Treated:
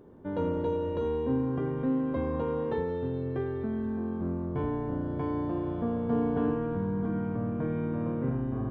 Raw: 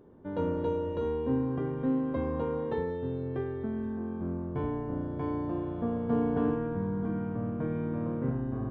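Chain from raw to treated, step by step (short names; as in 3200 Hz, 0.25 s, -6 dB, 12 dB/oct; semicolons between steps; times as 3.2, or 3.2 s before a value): in parallel at -1.5 dB: limiter -28 dBFS, peak gain reduction 9.5 dB; on the sum: thin delay 84 ms, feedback 85%, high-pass 2100 Hz, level -12.5 dB; gain -2.5 dB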